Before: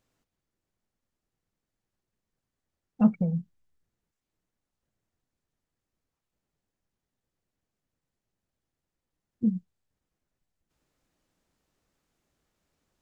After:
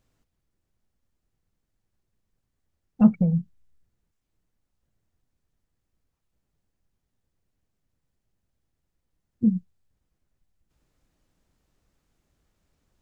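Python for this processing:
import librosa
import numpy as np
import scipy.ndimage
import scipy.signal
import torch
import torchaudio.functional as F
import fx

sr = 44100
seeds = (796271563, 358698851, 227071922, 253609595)

y = fx.low_shelf(x, sr, hz=130.0, db=11.0)
y = F.gain(torch.from_numpy(y), 1.5).numpy()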